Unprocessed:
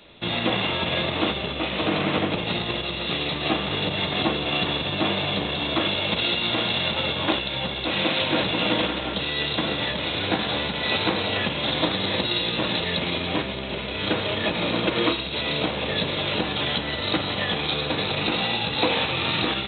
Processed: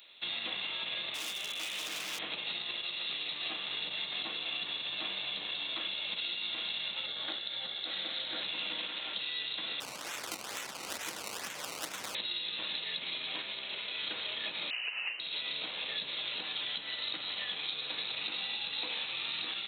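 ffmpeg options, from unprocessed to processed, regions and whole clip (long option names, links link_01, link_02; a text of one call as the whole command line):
ffmpeg -i in.wav -filter_complex "[0:a]asettb=1/sr,asplit=3[link_01][link_02][link_03];[link_01]atrim=end=1.144[link_04];[link_02]atrim=start=1.14:end=2.19,asetpts=PTS-STARTPTS,afade=type=in:duration=0.004:curve=qsin,afade=type=out:start_time=1.046:duration=0.004:curve=qsin,acrossover=split=3600[link_05][link_06];[link_06]acompressor=threshold=-44dB:ratio=4:attack=1:release=60[link_07];[link_05][link_07]amix=inputs=2:normalize=0,highshelf=frequency=2500:gain=5.5,asoftclip=type=hard:threshold=-24dB[link_08];[link_03]atrim=start=2.186[link_09];[link_04][link_08]acrossfade=duration=0.004:curve1=hsin:curve2=qsin[link_10];[link_10][link_09]acrossfade=duration=0.004:curve1=qsin:curve2=hsin,asettb=1/sr,asplit=3[link_11][link_12][link_13];[link_11]atrim=end=7.064[link_14];[link_12]atrim=start=7.06:end=8.42,asetpts=PTS-STARTPTS,afade=type=in:duration=0.004:curve=qsin,afade=type=out:start_time=1.356:duration=0.004:curve=qsin,equalizer=frequency=2600:width_type=o:width=0.41:gain=-10.5,bandreject=frequency=1000:width=5.4[link_15];[link_13]atrim=start=8.416[link_16];[link_14][link_15]acrossfade=duration=0.004:curve1=hsin:curve2=qsin[link_17];[link_17][link_16]acrossfade=duration=0.004:curve1=qsin:curve2=hsin,asettb=1/sr,asplit=3[link_18][link_19][link_20];[link_18]atrim=end=9.804[link_21];[link_19]atrim=start=9.8:end=12.15,asetpts=PTS-STARTPTS,afade=type=in:duration=0.004:curve=qsin,afade=type=out:start_time=2.346:duration=0.004:curve=qsin,acrusher=samples=18:mix=1:aa=0.000001:lfo=1:lforange=18:lforate=2.2,adynamicsmooth=sensitivity=1.5:basefreq=4000[link_22];[link_20]atrim=start=12.146[link_23];[link_21][link_22]acrossfade=duration=0.004:curve1=hsin:curve2=qsin[link_24];[link_24][link_23]acrossfade=duration=0.004:curve1=qsin:curve2=hsin,asettb=1/sr,asplit=3[link_25][link_26][link_27];[link_25]atrim=end=14.704[link_28];[link_26]atrim=start=14.7:end=15.2,asetpts=PTS-STARTPTS,afade=type=in:duration=0.004:curve=qsin,afade=type=out:start_time=0.496:duration=0.004:curve=qsin,bandreject=frequency=50:width_type=h:width=6,bandreject=frequency=100:width_type=h:width=6,bandreject=frequency=150:width_type=h:width=6,bandreject=frequency=200:width_type=h:width=6,bandreject=frequency=250:width_type=h:width=6,bandreject=frequency=300:width_type=h:width=6,bandreject=frequency=350:width_type=h:width=6,lowpass=frequency=2600:width_type=q:width=0.5098,lowpass=frequency=2600:width_type=q:width=0.6013,lowpass=frequency=2600:width_type=q:width=0.9,lowpass=frequency=2600:width_type=q:width=2.563,afreqshift=-3100,highpass=43[link_29];[link_27]atrim=start=15.196[link_30];[link_28][link_29]acrossfade=duration=0.004:curve1=hsin:curve2=qsin[link_31];[link_31][link_30]acrossfade=duration=0.004:curve1=qsin:curve2=hsin,aderivative,acrossover=split=330[link_32][link_33];[link_33]acompressor=threshold=-38dB:ratio=5[link_34];[link_32][link_34]amix=inputs=2:normalize=0,volume=3.5dB" out.wav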